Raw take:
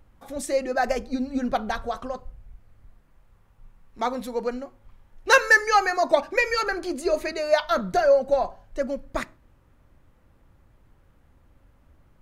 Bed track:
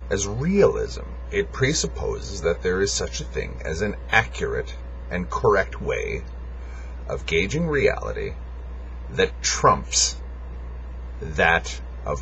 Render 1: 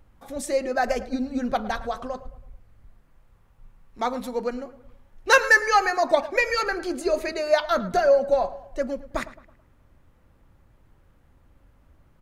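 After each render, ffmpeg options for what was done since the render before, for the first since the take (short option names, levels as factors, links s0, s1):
-filter_complex "[0:a]asplit=2[s0][s1];[s1]adelay=109,lowpass=f=2600:p=1,volume=0.168,asplit=2[s2][s3];[s3]adelay=109,lowpass=f=2600:p=1,volume=0.45,asplit=2[s4][s5];[s5]adelay=109,lowpass=f=2600:p=1,volume=0.45,asplit=2[s6][s7];[s7]adelay=109,lowpass=f=2600:p=1,volume=0.45[s8];[s0][s2][s4][s6][s8]amix=inputs=5:normalize=0"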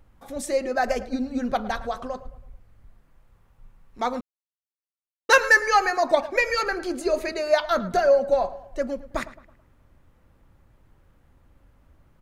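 -filter_complex "[0:a]asplit=3[s0][s1][s2];[s0]atrim=end=4.21,asetpts=PTS-STARTPTS,afade=t=out:st=4.206:d=0.004:c=hsin[s3];[s1]atrim=start=4.21:end=5.29,asetpts=PTS-STARTPTS,volume=0[s4];[s2]atrim=start=5.29,asetpts=PTS-STARTPTS,afade=t=in:d=0.004:c=hsin[s5];[s3][s4][s5]concat=n=3:v=0:a=1"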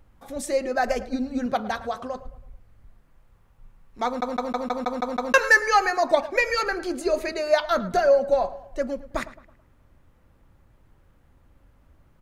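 -filter_complex "[0:a]asettb=1/sr,asplit=3[s0][s1][s2];[s0]atrim=end=1.464[s3];[s1]atrim=start=1.46:end=2.15,asetpts=PTS-STARTPTS,afade=t=in:d=0.004:c=qsin,afade=t=out:st=0.686:d=0.004:c=qsin,highpass=70[s4];[s2]atrim=start=2.146[s5];[s3][s4]acrossfade=d=0.004:c1=hsin:c2=qsin[s6];[s6][s5]acrossfade=d=0.004:c1=qsin:c2=hsin,asplit=9[s7][s8][s9][s10][s11][s12][s13][s14][s15];[s7]atrim=end=4.222[s16];[s8]atrim=start=4.058:end=4.222[s17];[s9]atrim=start=4.058:end=4.222[s18];[s10]atrim=start=4.058:end=4.222[s19];[s11]atrim=start=4.058:end=4.222[s20];[s12]atrim=start=4.058:end=4.222[s21];[s13]atrim=start=4.058:end=4.222[s22];[s14]atrim=start=4.058:end=4.222[s23];[s15]atrim=start=5.338[s24];[s16][s17]acrossfade=d=0.004:c1=hsin:c2=hsin[s25];[s25][s18]acrossfade=d=0.004:c1=hsin:c2=hsin[s26];[s26][s19]acrossfade=d=0.004:c1=hsin:c2=hsin[s27];[s27][s20]acrossfade=d=0.004:c1=hsin:c2=hsin[s28];[s28][s21]acrossfade=d=0.004:c1=hsin:c2=hsin[s29];[s29][s22]acrossfade=d=0.004:c1=hsin:c2=hsin[s30];[s30][s23]acrossfade=d=0.004:c1=hsin:c2=hsin[s31];[s31][s24]acrossfade=d=0.004:c1=hsin:c2=hsin"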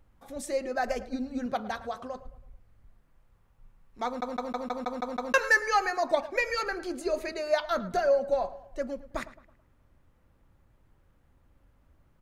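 -af "volume=0.501"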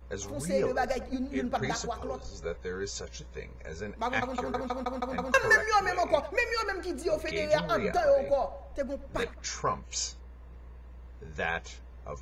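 -filter_complex "[1:a]volume=0.211[s0];[0:a][s0]amix=inputs=2:normalize=0"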